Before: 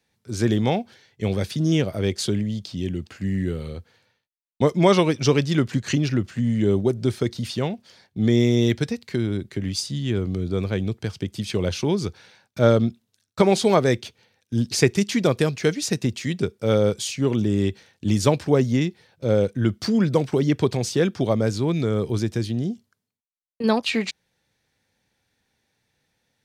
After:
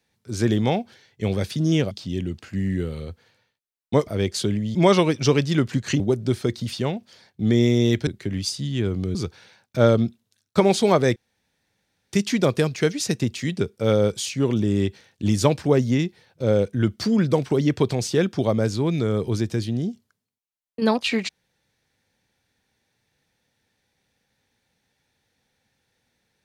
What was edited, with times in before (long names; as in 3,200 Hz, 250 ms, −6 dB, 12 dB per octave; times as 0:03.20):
0:01.91–0:02.59: move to 0:04.75
0:06.00–0:06.77: remove
0:08.84–0:09.38: remove
0:10.46–0:11.97: remove
0:13.98–0:14.95: fill with room tone